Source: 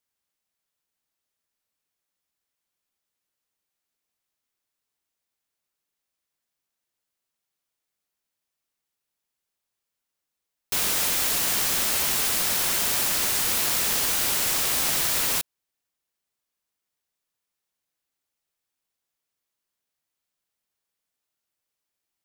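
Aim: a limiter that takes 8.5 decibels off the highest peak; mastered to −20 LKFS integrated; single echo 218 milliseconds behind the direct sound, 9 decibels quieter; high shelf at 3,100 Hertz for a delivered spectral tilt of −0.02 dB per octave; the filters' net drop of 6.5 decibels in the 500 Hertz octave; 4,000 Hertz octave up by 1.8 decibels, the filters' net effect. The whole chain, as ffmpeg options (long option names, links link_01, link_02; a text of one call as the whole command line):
ffmpeg -i in.wav -af "equalizer=frequency=500:width_type=o:gain=-8.5,highshelf=frequency=3100:gain=-4,equalizer=frequency=4000:width_type=o:gain=5.5,alimiter=limit=-21.5dB:level=0:latency=1,aecho=1:1:218:0.355,volume=8dB" out.wav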